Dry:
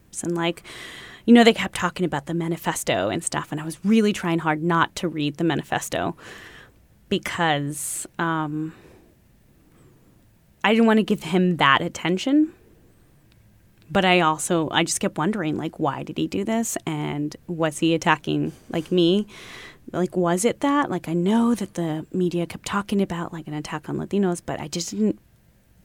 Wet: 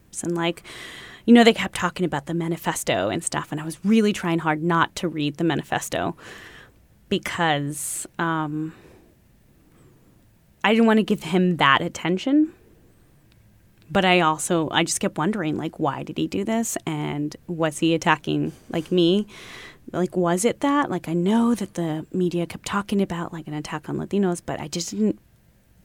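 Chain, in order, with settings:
0:12.04–0:12.45: high-shelf EQ 4,200 Hz −9 dB

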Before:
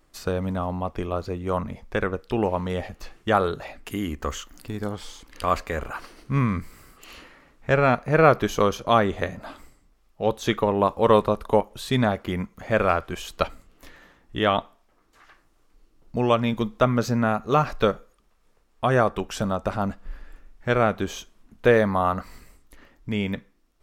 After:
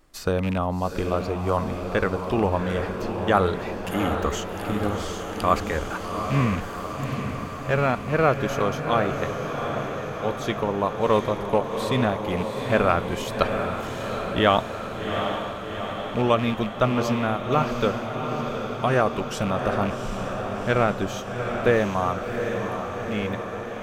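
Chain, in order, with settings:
loose part that buzzes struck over −26 dBFS, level −25 dBFS
speech leveller within 4 dB 2 s
feedback delay with all-pass diffusion 764 ms, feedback 69%, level −6 dB
level −1.5 dB

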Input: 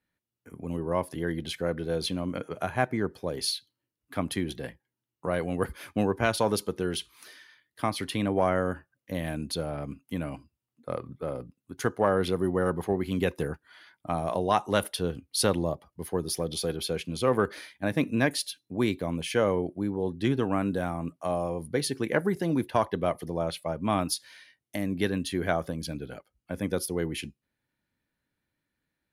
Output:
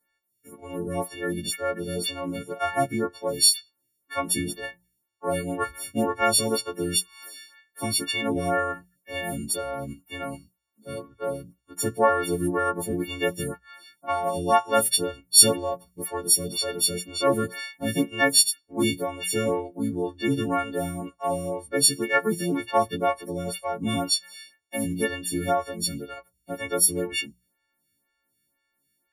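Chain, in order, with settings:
every partial snapped to a pitch grid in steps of 4 semitones
mains-hum notches 60/120/180 Hz
phaser with staggered stages 2 Hz
level +3.5 dB

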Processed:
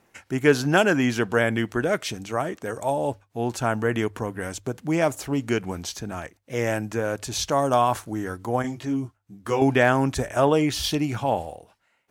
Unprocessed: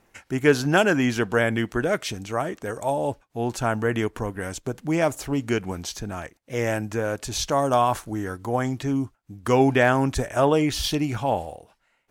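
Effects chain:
high-pass filter 59 Hz
mains-hum notches 50/100 Hz
0:08.62–0:09.62: micro pitch shift up and down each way 12 cents

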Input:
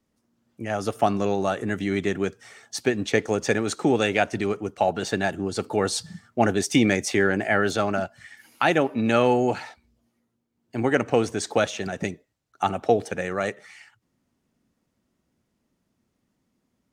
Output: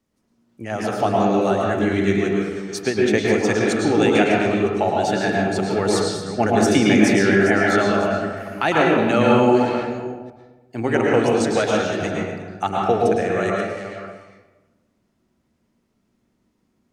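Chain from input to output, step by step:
delay that plays each chunk backwards 303 ms, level −10.5 dB
convolution reverb RT60 1.2 s, pre-delay 102 ms, DRR −3 dB

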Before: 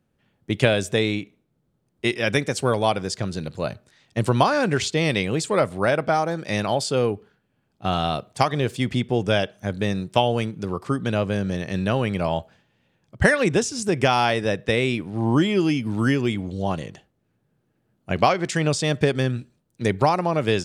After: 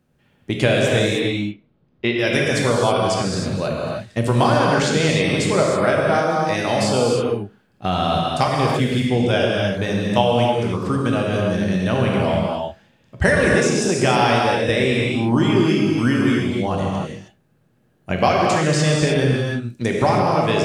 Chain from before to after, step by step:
0:01.19–0:02.19: low-pass filter 4,000 Hz 24 dB per octave
reverb whose tail is shaped and stops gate 340 ms flat, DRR −2.5 dB
in parallel at +2 dB: downward compressor, threshold −26 dBFS, peak gain reduction 15.5 dB
on the sum: level −3 dB

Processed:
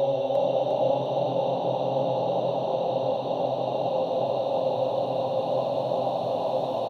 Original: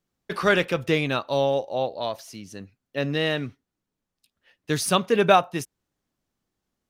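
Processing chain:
harmonic and percussive parts rebalanced percussive −16 dB
extreme stretch with random phases 38×, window 1.00 s, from 0:01.74
echo with shifted repeats 353 ms, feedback 51%, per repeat +40 Hz, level −4 dB
level +1.5 dB

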